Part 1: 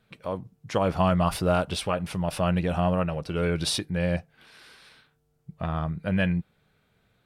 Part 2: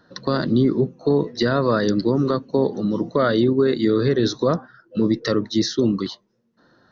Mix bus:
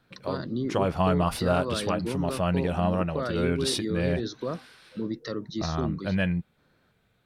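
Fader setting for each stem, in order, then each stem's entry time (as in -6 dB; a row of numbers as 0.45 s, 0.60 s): -1.5 dB, -12.5 dB; 0.00 s, 0.00 s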